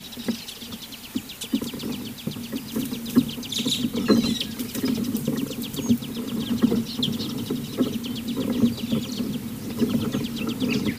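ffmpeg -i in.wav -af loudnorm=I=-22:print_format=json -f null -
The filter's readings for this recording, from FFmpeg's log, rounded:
"input_i" : "-26.4",
"input_tp" : "-5.3",
"input_lra" : "2.9",
"input_thresh" : "-36.4",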